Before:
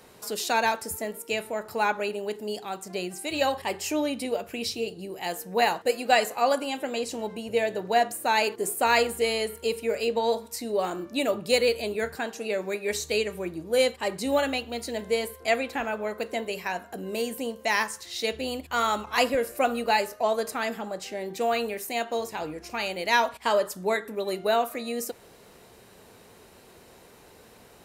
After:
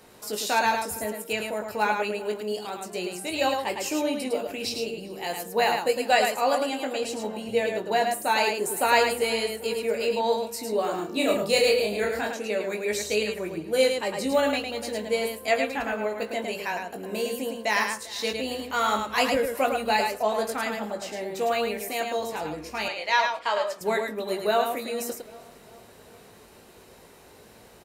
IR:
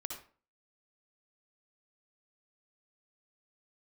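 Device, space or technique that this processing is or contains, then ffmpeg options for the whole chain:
slapback doubling: -filter_complex "[0:a]asplit=3[link_01][link_02][link_03];[link_02]adelay=19,volume=-6dB[link_04];[link_03]adelay=107,volume=-4.5dB[link_05];[link_01][link_04][link_05]amix=inputs=3:normalize=0,asettb=1/sr,asplit=3[link_06][link_07][link_08];[link_06]atrim=end=10.954[link_09];[link_07]atrim=start=10.95:end=12.33,asetpts=PTS-STARTPTS,afade=type=in:duration=0.004:curve=qsin,afade=type=out:start_time=1.376:duration=0.004:curve=qsin,asplit=2[link_10][link_11];[link_11]adelay=30,volume=-2.5dB[link_12];[link_10][link_12]amix=inputs=2:normalize=0,atrim=end_sample=60858[link_13];[link_08]atrim=start=12.326[link_14];[link_09][link_13]acrossfade=duration=0.004:curve1=hsin:curve2=qsin[link_15];[link_15][link_14]acrossfade=duration=0.004:curve1=qsin:curve2=hsin,asettb=1/sr,asplit=3[link_16][link_17][link_18];[link_16]atrim=end=22.884[link_19];[link_17]atrim=start=22.88:end=23.81,asetpts=PTS-STARTPTS,afade=type=in:duration=0.004:curve=qsin,afade=type=out:start_time=0.926:duration=0.004:curve=qsin,acrossover=split=520 6600:gain=0.141 1 0.158[link_20][link_21][link_22];[link_20][link_21][link_22]amix=inputs=3:normalize=0[link_23];[link_18]atrim=start=23.806[link_24];[link_19][link_23]acrossfade=duration=0.004:curve1=hsin:curve2=qsin[link_25];[link_25][link_24]acrossfade=duration=0.004:curve1=qsin:curve2=hsin,asplit=2[link_26][link_27];[link_27]adelay=396,lowpass=frequency=2700:poles=1,volume=-20dB,asplit=2[link_28][link_29];[link_29]adelay=396,lowpass=frequency=2700:poles=1,volume=0.54,asplit=2[link_30][link_31];[link_31]adelay=396,lowpass=frequency=2700:poles=1,volume=0.54,asplit=2[link_32][link_33];[link_33]adelay=396,lowpass=frequency=2700:poles=1,volume=0.54[link_34];[link_26][link_28][link_30][link_32][link_34]amix=inputs=5:normalize=0,volume=-1dB"

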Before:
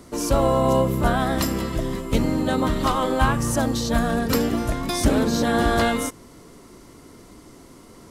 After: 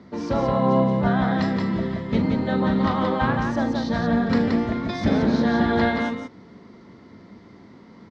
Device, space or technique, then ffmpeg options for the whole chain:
guitar cabinet: -af "highpass=88,equalizer=frequency=100:width_type=q:width=4:gain=4,equalizer=frequency=200:width_type=q:width=4:gain=8,equalizer=frequency=300:width_type=q:width=4:gain=-4,equalizer=frequency=900:width_type=q:width=4:gain=6,equalizer=frequency=1900:width_type=q:width=4:gain=5,equalizer=frequency=2800:width_type=q:width=4:gain=-6,lowpass=frequency=4400:width=0.5412,lowpass=frequency=4400:width=1.3066,equalizer=frequency=250:width_type=o:width=0.67:gain=3,equalizer=frequency=1000:width_type=o:width=0.67:gain=-4,equalizer=frequency=10000:width_type=o:width=0.67:gain=-8,aecho=1:1:40.82|174.9:0.316|0.631,volume=-3.5dB"

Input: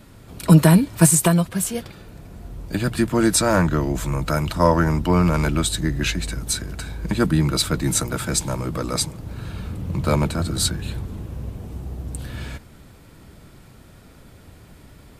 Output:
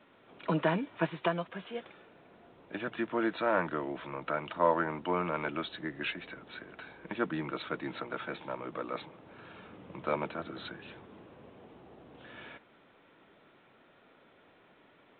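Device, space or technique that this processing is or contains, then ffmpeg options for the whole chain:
telephone: -af "highpass=380,lowpass=3500,volume=-8dB" -ar 8000 -c:a pcm_alaw

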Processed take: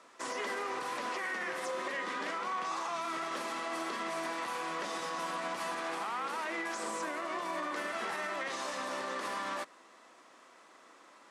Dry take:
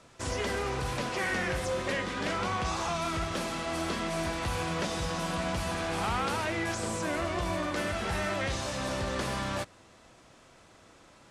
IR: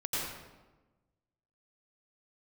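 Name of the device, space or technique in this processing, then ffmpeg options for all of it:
laptop speaker: -af "highpass=frequency=250:width=0.5412,highpass=frequency=250:width=1.3066,equalizer=frequency=1100:width_type=o:width=0.56:gain=8,equalizer=frequency=1900:width_type=o:width=0.32:gain=5.5,alimiter=level_in=0.5dB:limit=-24dB:level=0:latency=1:release=74,volume=-0.5dB,volume=-3.5dB"

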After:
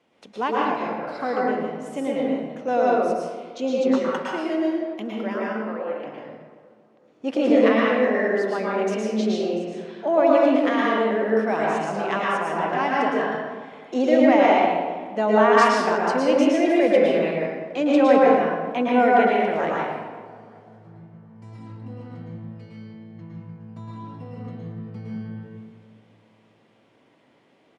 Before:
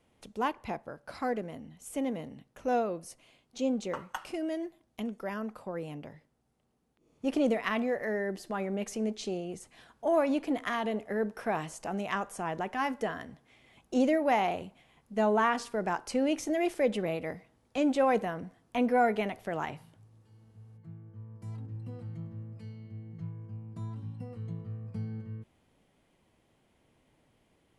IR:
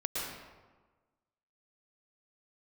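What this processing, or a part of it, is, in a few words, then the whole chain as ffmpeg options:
supermarket ceiling speaker: -filter_complex "[0:a]asettb=1/sr,asplit=3[link_01][link_02][link_03];[link_01]atrim=end=5.474[link_04];[link_02]atrim=start=5.47:end=6.02,asetpts=PTS-STARTPTS,afade=type=in:duration=0.004:curve=qsin,afade=type=out:start_time=0.546:duration=0.004:curve=qsin,acrossover=split=370 2800:gain=0.0794 1 0.158[link_05][link_06][link_07];[link_05][link_06][link_07]amix=inputs=3:normalize=0[link_08];[link_03]atrim=start=6.016[link_09];[link_04][link_08]acrossfade=duration=0.004:curve1=hsin:curve2=qsin[link_10];[link_10][link_09]acrossfade=duration=0.004:curve1=qsin:curve2=hsin,highpass=220,lowpass=5300[link_11];[1:a]atrim=start_sample=2205[link_12];[link_11][link_12]afir=irnorm=-1:irlink=0,asettb=1/sr,asplit=3[link_13][link_14][link_15];[link_13]atrim=end=9.554[link_16];[link_14]atrim=start=9.55:end=10.35,asetpts=PTS-STARTPTS,afade=type=in:duration=0.004:curve=qsin,afade=type=out:start_time=0.796:duration=0.004:curve=qsin,lowpass=6400[link_17];[link_15]atrim=start=10.346[link_18];[link_16][link_17]acrossfade=duration=0.004:curve1=hsin:curve2=qsin[link_19];[link_19][link_18]acrossfade=duration=0.004:curve1=qsin:curve2=hsin,asettb=1/sr,asplit=3[link_20][link_21][link_22];[link_20]atrim=end=15.574[link_23];[link_21]atrim=start=15.57:end=15.98,asetpts=PTS-STARTPTS,afade=type=in:duration=0.004:curve=qsin,afade=type=out:start_time=0.406:duration=0.004:curve=qsin,highshelf=frequency=4100:gain=11.5[link_24];[link_22]atrim=start=15.976[link_25];[link_23][link_24]acrossfade=duration=0.004:curve1=hsin:curve2=qsin[link_26];[link_26][link_25]acrossfade=duration=0.004:curve1=qsin:curve2=hsin,asplit=2[link_27][link_28];[link_28]adelay=382,lowpass=frequency=2300:poles=1,volume=-19.5dB,asplit=2[link_29][link_30];[link_30]adelay=382,lowpass=frequency=2300:poles=1,volume=0.51,asplit=2[link_31][link_32];[link_32]adelay=382,lowpass=frequency=2300:poles=1,volume=0.51,asplit=2[link_33][link_34];[link_34]adelay=382,lowpass=frequency=2300:poles=1,volume=0.51[link_35];[link_27][link_29][link_31][link_33][link_35]amix=inputs=5:normalize=0,volume=6dB"

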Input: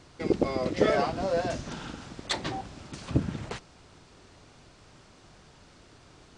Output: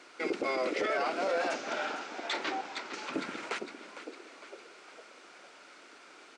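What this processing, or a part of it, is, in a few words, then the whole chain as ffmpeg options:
laptop speaker: -filter_complex "[0:a]asettb=1/sr,asplit=3[link_01][link_02][link_03];[link_01]atrim=end=1.544[link_04];[link_02]atrim=start=1.54:end=3.13,asetpts=PTS-STARTPTS,afade=type=in:duration=0.004:curve=qsin,afade=type=out:start_time=1.586:duration=0.004:curve=qsin,lowpass=frequency=7300:width=0.5412,lowpass=frequency=7300:width=1.3066[link_05];[link_03]atrim=start=3.126[link_06];[link_04][link_05]acrossfade=duration=0.004:curve1=hsin:curve2=qsin[link_07];[link_07][link_06]acrossfade=duration=0.004:curve1=qsin:curve2=hsin,asplit=6[link_08][link_09][link_10][link_11][link_12][link_13];[link_09]adelay=456,afreqshift=89,volume=-13dB[link_14];[link_10]adelay=912,afreqshift=178,volume=-18.8dB[link_15];[link_11]adelay=1368,afreqshift=267,volume=-24.7dB[link_16];[link_12]adelay=1824,afreqshift=356,volume=-30.5dB[link_17];[link_13]adelay=2280,afreqshift=445,volume=-36.4dB[link_18];[link_08][link_14][link_15][link_16][link_17][link_18]amix=inputs=6:normalize=0,highpass=frequency=300:width=0.5412,highpass=frequency=300:width=1.3066,equalizer=frequency=1400:width_type=o:width=0.28:gain=9,equalizer=frequency=2300:width_type=o:width=0.53:gain=8,alimiter=limit=-22.5dB:level=0:latency=1:release=15"

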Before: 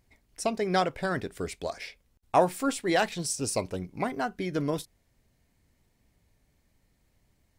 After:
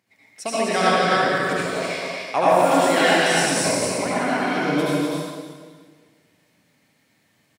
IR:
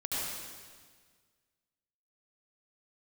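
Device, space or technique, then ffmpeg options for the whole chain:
stadium PA: -filter_complex "[0:a]highpass=frequency=140:width=0.5412,highpass=frequency=140:width=1.3066,equalizer=frequency=2200:width_type=o:width=2.3:gain=7,aecho=1:1:166.2|253.6:0.251|0.708[link_01];[1:a]atrim=start_sample=2205[link_02];[link_01][link_02]afir=irnorm=-1:irlink=0"

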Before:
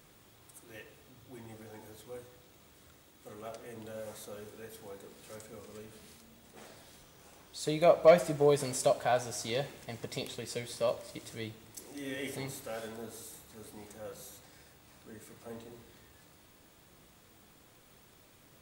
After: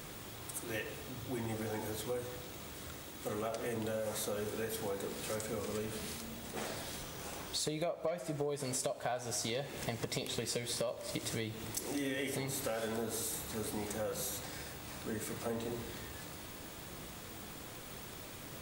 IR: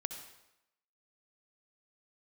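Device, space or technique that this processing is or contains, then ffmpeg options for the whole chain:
serial compression, peaks first: -af "acompressor=threshold=-42dB:ratio=6,acompressor=threshold=-48dB:ratio=2.5,volume=12.5dB"

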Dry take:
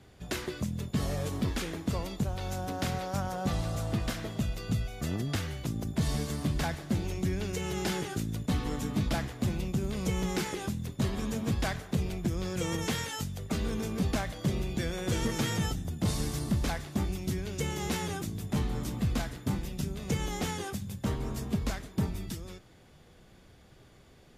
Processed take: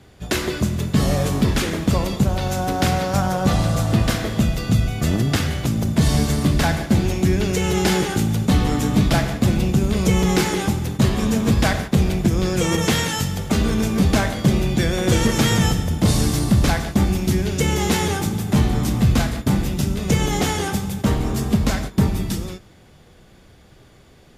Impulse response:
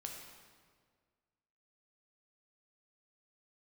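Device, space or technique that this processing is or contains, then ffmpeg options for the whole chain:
keyed gated reverb: -filter_complex "[0:a]asplit=3[link_01][link_02][link_03];[1:a]atrim=start_sample=2205[link_04];[link_02][link_04]afir=irnorm=-1:irlink=0[link_05];[link_03]apad=whole_len=1075094[link_06];[link_05][link_06]sidechaingate=range=-17dB:threshold=-42dB:ratio=16:detection=peak,volume=4.5dB[link_07];[link_01][link_07]amix=inputs=2:normalize=0,volume=6.5dB"

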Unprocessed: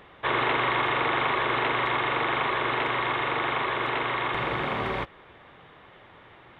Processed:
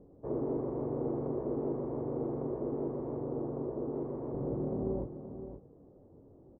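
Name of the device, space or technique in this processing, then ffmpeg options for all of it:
under water: -filter_complex "[0:a]lowpass=frequency=500:width=0.5412,lowpass=frequency=500:width=1.3066,equalizer=frequency=270:width_type=o:width=0.2:gain=7,asettb=1/sr,asplit=3[link_01][link_02][link_03];[link_01]atrim=end=3.224[link_04];[link_02]atrim=start=3.22:end=3.94,asetpts=PTS-STARTPTS,afade=type=in:duration=0.004:curve=qsin,afade=type=out:start_time=0.716:duration=0.004:curve=qsin,lowpass=1700[link_05];[link_03]atrim=start=3.936[link_06];[link_04][link_05]acrossfade=duration=0.004:curve1=hsin:curve2=qsin[link_07];[link_07][link_06]acrossfade=duration=0.004:curve1=qsin:curve2=hsin,asplit=2[link_08][link_09];[link_09]adelay=21,volume=-7dB[link_10];[link_08][link_10]amix=inputs=2:normalize=0,aecho=1:1:525:0.316,volume=-2dB"

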